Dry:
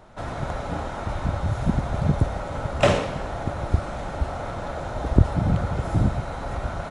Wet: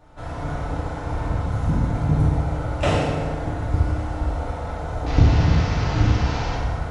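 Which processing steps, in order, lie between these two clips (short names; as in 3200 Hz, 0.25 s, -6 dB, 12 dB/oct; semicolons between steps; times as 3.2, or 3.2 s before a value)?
5.06–6.55 delta modulation 32 kbps, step -20.5 dBFS; low shelf 94 Hz +7.5 dB; FDN reverb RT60 1.8 s, low-frequency decay 0.9×, high-frequency decay 0.6×, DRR -6 dB; gain -7.5 dB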